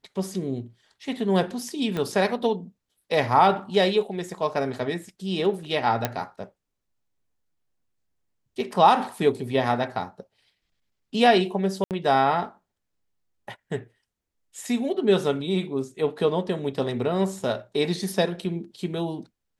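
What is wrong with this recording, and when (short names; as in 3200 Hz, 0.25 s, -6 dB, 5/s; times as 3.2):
1.97 pop -16 dBFS
6.05 pop -8 dBFS
11.84–11.91 gap 68 ms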